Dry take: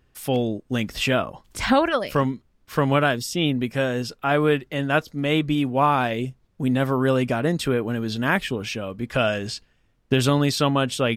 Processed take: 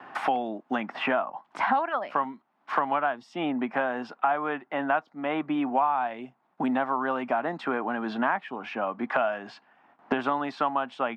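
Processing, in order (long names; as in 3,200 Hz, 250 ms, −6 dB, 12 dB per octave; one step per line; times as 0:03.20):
low-pass filter 1,300 Hz 12 dB per octave
noise gate with hold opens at −57 dBFS
high-pass filter 230 Hz 24 dB per octave
low shelf with overshoot 610 Hz −8 dB, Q 3
multiband upward and downward compressor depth 100%
level −1.5 dB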